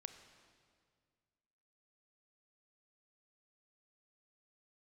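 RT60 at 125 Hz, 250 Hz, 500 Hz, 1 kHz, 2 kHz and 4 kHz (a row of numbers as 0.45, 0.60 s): 2.4, 2.2, 2.0, 1.9, 1.7, 1.7 s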